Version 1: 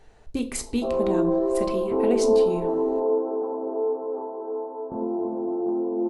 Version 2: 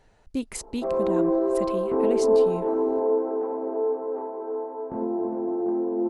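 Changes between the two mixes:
speech: send off; background: remove LPF 1200 Hz 24 dB/oct

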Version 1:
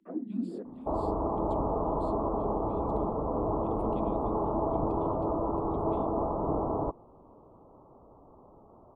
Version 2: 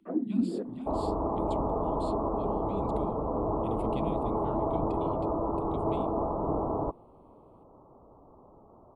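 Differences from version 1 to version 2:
speech +11.5 dB; first sound +5.5 dB

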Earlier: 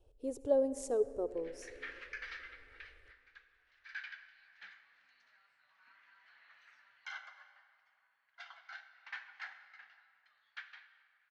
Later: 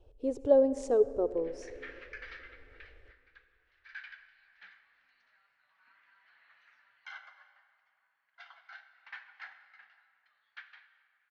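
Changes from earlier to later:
speech +7.0 dB; master: add air absorption 110 m

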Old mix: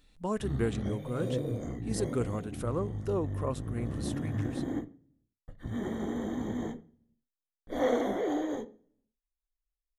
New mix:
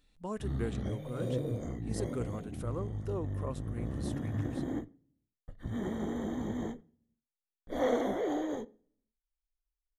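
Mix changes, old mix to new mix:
speech -6.0 dB; background: send -6.5 dB

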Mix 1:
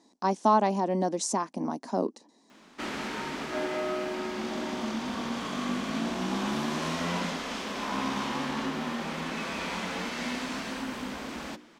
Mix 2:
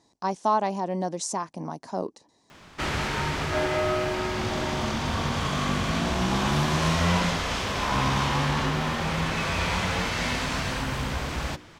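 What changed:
background +7.0 dB; master: add resonant low shelf 160 Hz +12.5 dB, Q 3

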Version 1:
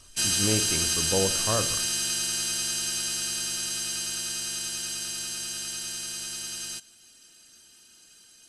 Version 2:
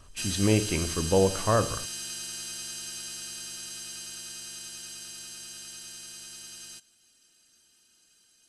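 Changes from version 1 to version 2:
speech +4.5 dB; background -9.0 dB

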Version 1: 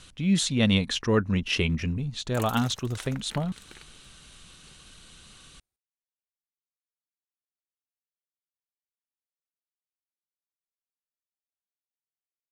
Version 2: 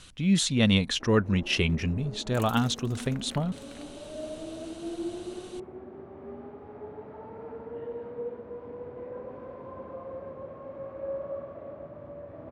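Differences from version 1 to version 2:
first sound: unmuted; second sound -4.0 dB

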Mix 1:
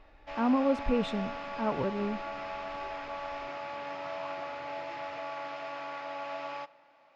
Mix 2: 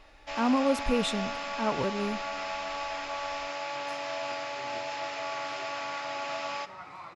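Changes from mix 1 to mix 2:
first sound: send +6.5 dB; second sound: entry +2.75 s; master: remove tape spacing loss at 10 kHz 25 dB

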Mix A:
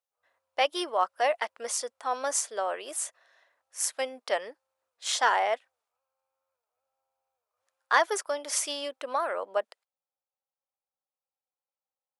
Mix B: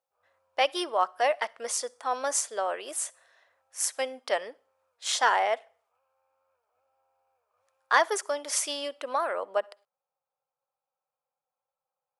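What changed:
background +10.5 dB; reverb: on, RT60 0.45 s

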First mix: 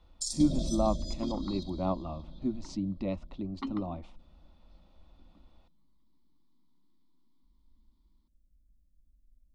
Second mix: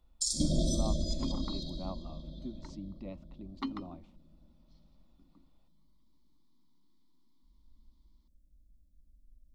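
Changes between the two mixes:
speech -11.0 dB; first sound: send +9.0 dB; second sound: remove air absorption 130 m

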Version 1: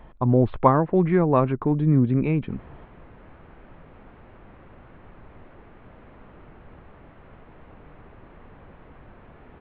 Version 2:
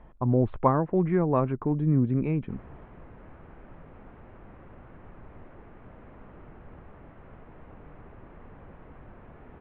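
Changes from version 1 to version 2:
speech -4.0 dB; master: add air absorption 340 m

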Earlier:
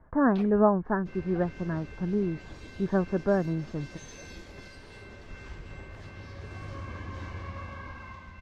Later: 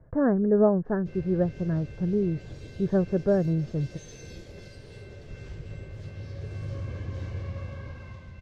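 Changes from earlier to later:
first sound: muted; master: add graphic EQ 125/250/500/1000/2000 Hz +11/-4/+7/-10/-3 dB

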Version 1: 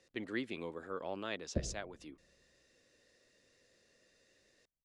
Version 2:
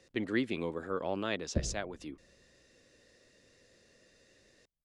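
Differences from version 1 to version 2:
speech +5.0 dB; master: add low shelf 300 Hz +5.5 dB

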